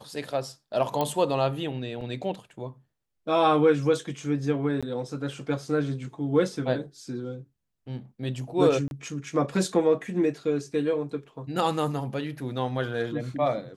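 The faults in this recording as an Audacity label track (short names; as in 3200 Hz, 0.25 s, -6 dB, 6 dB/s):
1.010000	1.010000	pop -13 dBFS
2.010000	2.010000	gap 2.8 ms
4.810000	4.830000	gap 16 ms
8.880000	8.910000	gap 31 ms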